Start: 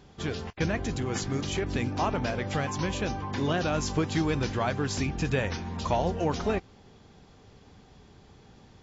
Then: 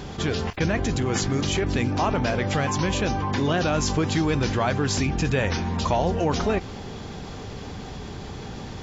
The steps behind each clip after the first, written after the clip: fast leveller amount 50%; gain +2.5 dB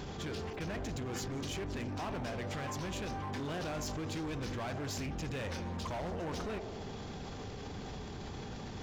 band-limited delay 66 ms, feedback 70%, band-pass 460 Hz, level -10 dB; hard clip -23.5 dBFS, distortion -9 dB; limiter -34.5 dBFS, peak gain reduction 11 dB; gain -1 dB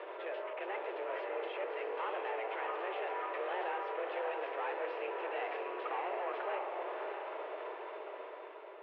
ending faded out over 1.21 s; on a send: diffused feedback echo 0.623 s, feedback 43%, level -4 dB; on the sum: mistuned SSB +190 Hz 210–2600 Hz; gain +1 dB

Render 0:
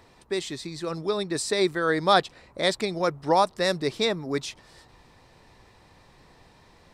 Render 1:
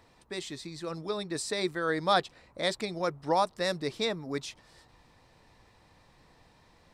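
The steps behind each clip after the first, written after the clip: notch 390 Hz, Q 12; gain -5.5 dB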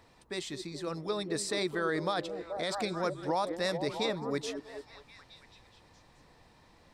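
delay with a stepping band-pass 0.215 s, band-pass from 300 Hz, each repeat 0.7 oct, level -5.5 dB; limiter -21.5 dBFS, peak gain reduction 11 dB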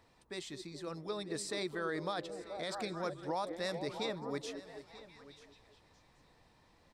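echo 0.937 s -17.5 dB; gain -6 dB

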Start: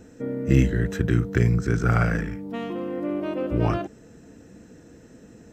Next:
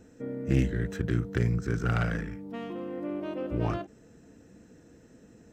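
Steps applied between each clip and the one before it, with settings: self-modulated delay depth 0.17 ms; ending taper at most 280 dB/s; gain -6.5 dB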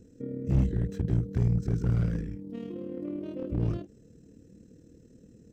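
EQ curve 120 Hz 0 dB, 510 Hz -5 dB, 730 Hz -19 dB, 1600 Hz -17 dB, 4500 Hz -7 dB; AM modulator 38 Hz, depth 35%; slew limiter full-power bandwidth 8.8 Hz; gain +5 dB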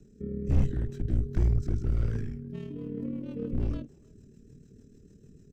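frequency shift -58 Hz; rotary speaker horn 1.2 Hz, later 6.7 Hz, at 2.14; speakerphone echo 0.31 s, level -26 dB; gain +2 dB

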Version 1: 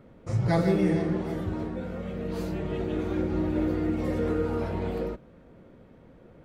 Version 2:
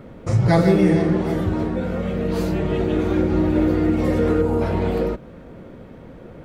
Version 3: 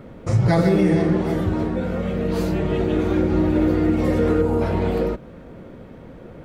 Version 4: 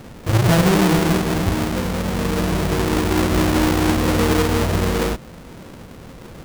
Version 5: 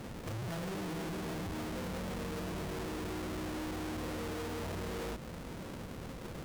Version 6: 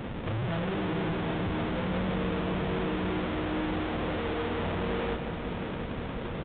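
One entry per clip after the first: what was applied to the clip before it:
spectral gain 4.42–4.62, 1100–6300 Hz -7 dB; in parallel at -0.5 dB: compressor, threshold -35 dBFS, peak gain reduction 15 dB; on the sum: gain +6.5 dB
maximiser +7 dB; gain -7 dB
half-waves squared off; gain -2.5 dB
compressor, threshold -24 dBFS, peak gain reduction 11 dB; tube stage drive 35 dB, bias 0.45; gain -3 dB
multi-head echo 0.178 s, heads first and third, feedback 74%, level -12 dB; downsampling 8000 Hz; gain +8 dB

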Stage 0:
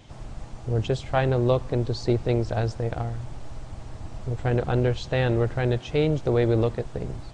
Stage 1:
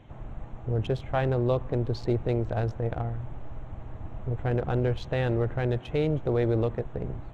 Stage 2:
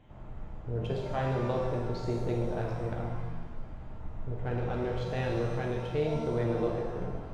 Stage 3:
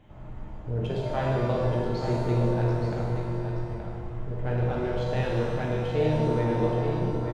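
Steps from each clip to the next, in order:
Wiener smoothing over 9 samples; in parallel at +0.5 dB: limiter -18 dBFS, peak gain reduction 7.5 dB; on the sum: high shelf 6300 Hz -10.5 dB; gain -7.5 dB
shimmer reverb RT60 1.2 s, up +7 st, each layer -8 dB, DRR -1 dB; gain -7.5 dB
echo 0.874 s -7.5 dB; reverb RT60 2.2 s, pre-delay 3 ms, DRR 3.5 dB; gain +2.5 dB

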